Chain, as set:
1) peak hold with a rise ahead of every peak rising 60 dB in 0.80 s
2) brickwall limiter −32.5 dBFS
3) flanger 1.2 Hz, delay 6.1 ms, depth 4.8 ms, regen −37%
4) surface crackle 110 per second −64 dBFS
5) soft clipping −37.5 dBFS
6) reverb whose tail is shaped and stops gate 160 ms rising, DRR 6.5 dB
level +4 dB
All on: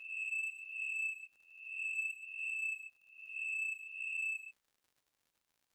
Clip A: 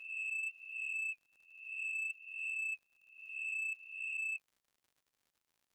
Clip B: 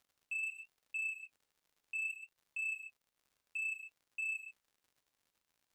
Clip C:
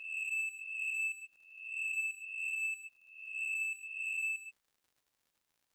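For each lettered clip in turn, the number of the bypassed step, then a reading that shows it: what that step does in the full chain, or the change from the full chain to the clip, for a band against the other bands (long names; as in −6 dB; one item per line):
6, change in momentary loudness spread −5 LU
1, change in momentary loudness spread −3 LU
3, change in integrated loudness +2.5 LU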